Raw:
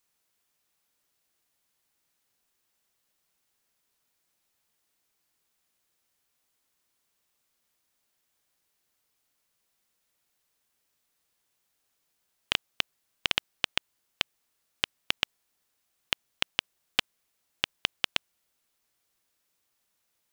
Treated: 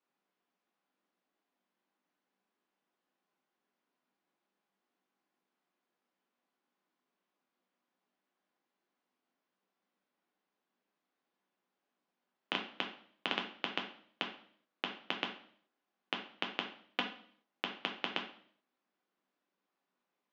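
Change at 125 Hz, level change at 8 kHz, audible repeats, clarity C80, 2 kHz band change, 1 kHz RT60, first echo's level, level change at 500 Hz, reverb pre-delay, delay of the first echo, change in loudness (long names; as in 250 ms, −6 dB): −6.5 dB, −21.5 dB, no echo audible, 13.0 dB, −6.5 dB, 0.55 s, no echo audible, 0.0 dB, 3 ms, no echo audible, −8.0 dB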